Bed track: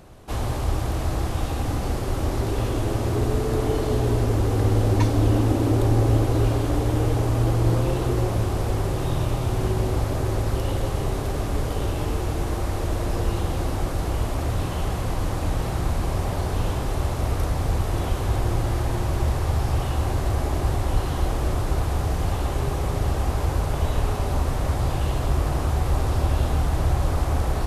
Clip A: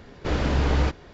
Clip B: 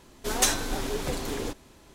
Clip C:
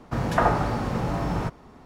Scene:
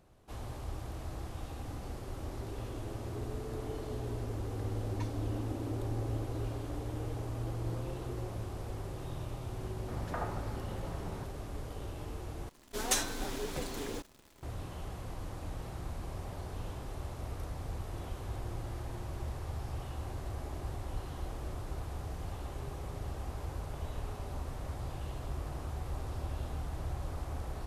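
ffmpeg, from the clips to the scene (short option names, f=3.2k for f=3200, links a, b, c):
-filter_complex "[0:a]volume=-16.5dB[a];[2:a]acrusher=bits=9:dc=4:mix=0:aa=0.000001[b];[a]asplit=2[c][d];[c]atrim=end=12.494[e];[b]atrim=end=1.94,asetpts=PTS-STARTPTS,volume=-7dB[f];[d]atrim=start=14.426[g];[3:a]atrim=end=1.85,asetpts=PTS-STARTPTS,volume=-17.5dB,afade=t=in:d=0.004:c=hsin,afade=t=out:st=1.846:d=0.004:c=hsin,adelay=9760[h];[e][f]acrossfade=d=0.004:c1=hsin:c2=hsin[i];[i][g]acrossfade=d=0.004:c1=hsin:c2=hsin[j];[j][h]amix=inputs=2:normalize=0"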